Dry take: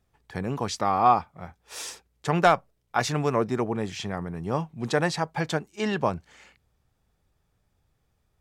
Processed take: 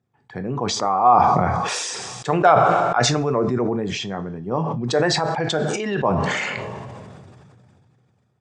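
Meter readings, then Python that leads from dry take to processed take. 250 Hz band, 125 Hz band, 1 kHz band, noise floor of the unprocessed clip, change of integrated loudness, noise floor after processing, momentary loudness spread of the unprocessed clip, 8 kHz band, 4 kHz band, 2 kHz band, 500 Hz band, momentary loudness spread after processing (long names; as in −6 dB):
+5.5 dB, +6.0 dB, +7.5 dB, −73 dBFS, +6.5 dB, −64 dBFS, 16 LU, +9.5 dB, +9.5 dB, +6.0 dB, +7.0 dB, 14 LU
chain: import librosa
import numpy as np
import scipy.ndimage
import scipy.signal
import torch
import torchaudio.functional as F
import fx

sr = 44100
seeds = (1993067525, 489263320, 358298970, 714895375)

y = fx.envelope_sharpen(x, sr, power=1.5)
y = scipy.signal.sosfilt(scipy.signal.ellip(3, 1.0, 40, [120.0, 8200.0], 'bandpass', fs=sr, output='sos'), y)
y = fx.rev_double_slope(y, sr, seeds[0], early_s=0.32, late_s=1.9, knee_db=-28, drr_db=8.5)
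y = fx.sustainer(y, sr, db_per_s=22.0)
y = y * librosa.db_to_amplitude(3.0)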